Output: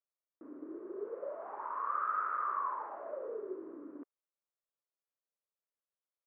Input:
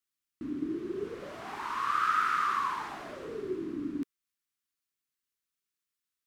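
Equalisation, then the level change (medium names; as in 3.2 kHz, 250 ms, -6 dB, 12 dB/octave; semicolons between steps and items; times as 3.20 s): resonant high-pass 550 Hz, resonance Q 3.9; low-pass 1.3 kHz 24 dB/octave; band-stop 750 Hz, Q 12; -5.5 dB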